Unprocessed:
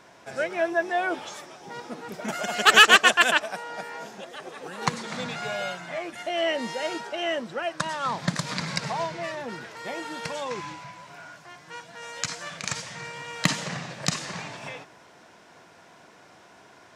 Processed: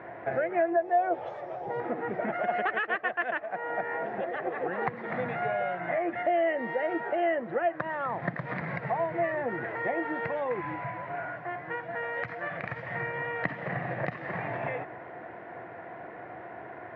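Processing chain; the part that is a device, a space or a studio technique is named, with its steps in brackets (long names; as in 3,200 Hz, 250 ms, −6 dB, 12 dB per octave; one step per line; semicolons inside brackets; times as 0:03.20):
0:00.76–0:01.80: drawn EQ curve 120 Hz 0 dB, 270 Hz −11 dB, 530 Hz +2 dB, 1,900 Hz −10 dB, 8,800 Hz +11 dB
bass amplifier (downward compressor 4 to 1, threshold −38 dBFS, peak gain reduction 23.5 dB; loudspeaker in its box 71–2,100 Hz, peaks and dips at 79 Hz +8 dB, 120 Hz +9 dB, 340 Hz +8 dB, 500 Hz +6 dB, 710 Hz +10 dB, 1,900 Hz +9 dB)
level +4 dB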